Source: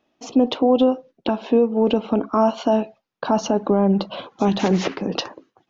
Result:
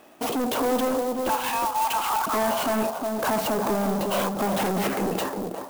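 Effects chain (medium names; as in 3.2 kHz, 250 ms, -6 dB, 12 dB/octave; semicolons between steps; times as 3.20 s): fade out at the end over 1.67 s; 1.29–2.27 s: steep high-pass 780 Hz 96 dB/octave; in parallel at 0 dB: compression, threshold -31 dBFS, peak gain reduction 17.5 dB; on the sum: peak limiter -15 dBFS, peak gain reduction 9 dB; saturation -30 dBFS, distortion -6 dB; on a send: feedback echo behind a low-pass 359 ms, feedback 31%, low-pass 1 kHz, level -4.5 dB; on the sum: overdrive pedal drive 12 dB, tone 1.9 kHz, clips at -25 dBFS; sampling jitter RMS 0.047 ms; trim +8.5 dB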